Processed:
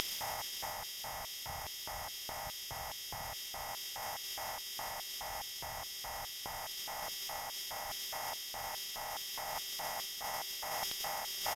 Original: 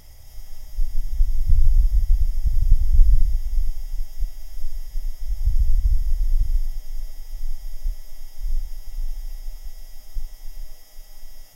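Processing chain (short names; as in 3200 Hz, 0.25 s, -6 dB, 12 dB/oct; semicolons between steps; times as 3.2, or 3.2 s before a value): per-bin compression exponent 0.4; downsampling 32000 Hz; reverse; upward compressor, threshold -7 dBFS; reverse; reverse echo 0.637 s -21 dB; LFO high-pass square 2.4 Hz 880–3300 Hz; tube stage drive 27 dB, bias 0.7; high shelf 3000 Hz -9.5 dB; gain +14.5 dB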